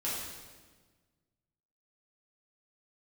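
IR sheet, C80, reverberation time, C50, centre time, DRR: 2.5 dB, 1.4 s, -0.5 dB, 83 ms, -8.5 dB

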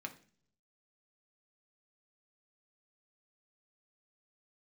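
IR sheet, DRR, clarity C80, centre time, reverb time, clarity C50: 3.0 dB, 18.5 dB, 7 ms, 0.45 s, 14.0 dB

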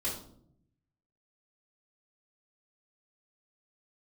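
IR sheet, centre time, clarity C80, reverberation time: 34 ms, 10.0 dB, 0.65 s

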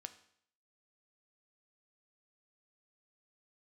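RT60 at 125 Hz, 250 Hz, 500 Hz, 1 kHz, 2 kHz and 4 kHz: 0.65, 0.65, 0.65, 0.65, 0.65, 0.65 s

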